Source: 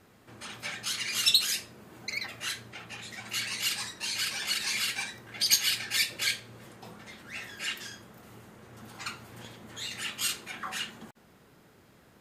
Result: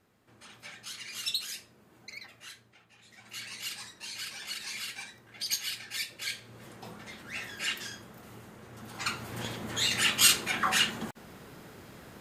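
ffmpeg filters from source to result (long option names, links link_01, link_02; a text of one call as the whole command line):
ffmpeg -i in.wav -af "volume=18.5dB,afade=type=out:start_time=2.02:duration=0.91:silence=0.354813,afade=type=in:start_time=2.93:duration=0.54:silence=0.298538,afade=type=in:start_time=6.24:duration=0.52:silence=0.334965,afade=type=in:start_time=8.86:duration=0.63:silence=0.398107" out.wav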